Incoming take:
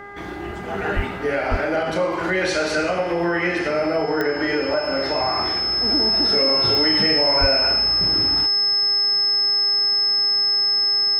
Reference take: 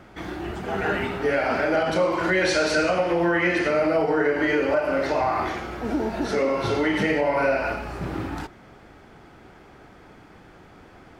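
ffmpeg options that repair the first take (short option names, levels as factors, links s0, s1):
-filter_complex "[0:a]adeclick=t=4,bandreject=f=404.2:t=h:w=4,bandreject=f=808.4:t=h:w=4,bandreject=f=1212.6:t=h:w=4,bandreject=f=1616.8:t=h:w=4,bandreject=f=2021:t=h:w=4,bandreject=f=5200:w=30,asplit=3[s0][s1][s2];[s0]afade=t=out:st=0.95:d=0.02[s3];[s1]highpass=f=140:w=0.5412,highpass=f=140:w=1.3066,afade=t=in:st=0.95:d=0.02,afade=t=out:st=1.07:d=0.02[s4];[s2]afade=t=in:st=1.07:d=0.02[s5];[s3][s4][s5]amix=inputs=3:normalize=0,asplit=3[s6][s7][s8];[s6]afade=t=out:st=1.5:d=0.02[s9];[s7]highpass=f=140:w=0.5412,highpass=f=140:w=1.3066,afade=t=in:st=1.5:d=0.02,afade=t=out:st=1.62:d=0.02[s10];[s8]afade=t=in:st=1.62:d=0.02[s11];[s9][s10][s11]amix=inputs=3:normalize=0,asplit=3[s12][s13][s14];[s12]afade=t=out:st=7.4:d=0.02[s15];[s13]highpass=f=140:w=0.5412,highpass=f=140:w=1.3066,afade=t=in:st=7.4:d=0.02,afade=t=out:st=7.52:d=0.02[s16];[s14]afade=t=in:st=7.52:d=0.02[s17];[s15][s16][s17]amix=inputs=3:normalize=0"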